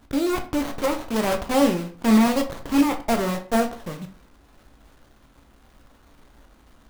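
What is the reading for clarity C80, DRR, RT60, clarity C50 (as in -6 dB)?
17.0 dB, 5.0 dB, 0.45 s, 11.5 dB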